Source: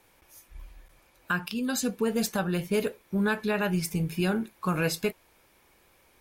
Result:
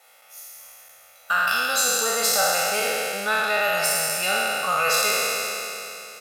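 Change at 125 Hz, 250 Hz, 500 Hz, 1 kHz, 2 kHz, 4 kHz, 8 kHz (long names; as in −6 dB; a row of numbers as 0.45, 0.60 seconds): −14.0, −13.5, +4.0, +12.5, +11.0, +14.0, +15.5 decibels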